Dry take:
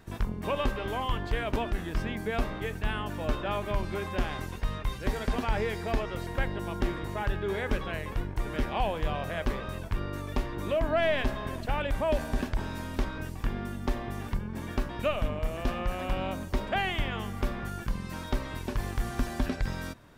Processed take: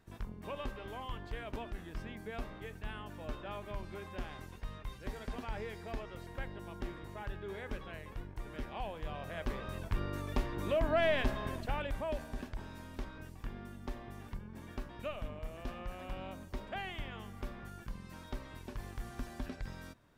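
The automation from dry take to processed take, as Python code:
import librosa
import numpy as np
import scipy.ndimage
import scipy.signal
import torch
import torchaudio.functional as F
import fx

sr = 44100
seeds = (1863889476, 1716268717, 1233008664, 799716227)

y = fx.gain(x, sr, db=fx.line((8.98, -12.0), (9.92, -3.5), (11.47, -3.5), (12.29, -12.0)))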